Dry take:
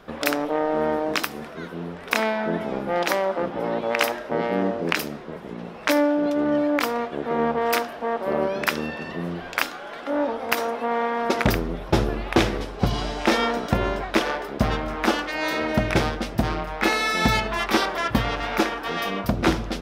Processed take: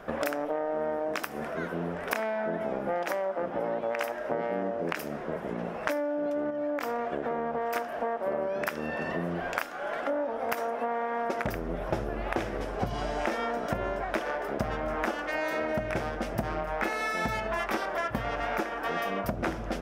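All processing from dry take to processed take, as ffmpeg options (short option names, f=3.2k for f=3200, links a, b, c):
-filter_complex "[0:a]asettb=1/sr,asplit=3[a][b][c];[a]atrim=end=6.504[d];[b]atrim=start=6.5:end=7.76,asetpts=PTS-STARTPTS,afade=t=in:d=0.004:c=qsin,afade=t=out:st=1.256:d=0.004:c=qsin,equalizer=f=10k:w=6.4:g=-9,acompressor=threshold=-25dB:ratio=4:attack=3.2:release=140:knee=1:detection=peak[e];[c]atrim=start=7.756[f];[d][e]acrossfade=d=0.004:c1=hsin:c2=qsin[g];[g][f]acrossfade=d=0.004:c1=qsin:c2=hsin,equalizer=f=630:t=o:w=0.67:g=7,equalizer=f=1.6k:t=o:w=0.67:g=4,equalizer=f=4k:t=o:w=0.67:g=-8,acompressor=threshold=-27dB:ratio=10"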